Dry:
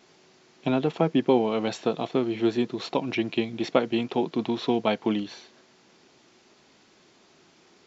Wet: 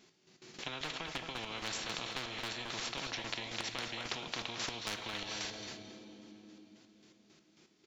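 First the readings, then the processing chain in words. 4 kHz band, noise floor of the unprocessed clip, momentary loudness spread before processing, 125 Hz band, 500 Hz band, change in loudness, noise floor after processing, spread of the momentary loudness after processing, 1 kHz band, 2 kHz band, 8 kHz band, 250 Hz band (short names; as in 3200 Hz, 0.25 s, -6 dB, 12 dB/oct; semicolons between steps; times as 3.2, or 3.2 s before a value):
-1.5 dB, -59 dBFS, 6 LU, -15.5 dB, -21.5 dB, -13.0 dB, -68 dBFS, 16 LU, -12.0 dB, -3.0 dB, n/a, -23.0 dB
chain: gate with hold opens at -46 dBFS; bell 790 Hz -8 dB 2.2 oct; harmonic-percussive split percussive -8 dB; dynamic EQ 310 Hz, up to +7 dB, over -48 dBFS, Q 7.6; compressor 5:1, threshold -30 dBFS, peak gain reduction 8.5 dB; chopper 3.7 Hz, depth 65%, duty 35%; hard clip -26.5 dBFS, distortion -25 dB; feedback echo 0.221 s, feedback 29%, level -14 dB; two-slope reverb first 0.31 s, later 3.7 s, from -18 dB, DRR 12.5 dB; spectral compressor 10:1; gain +5.5 dB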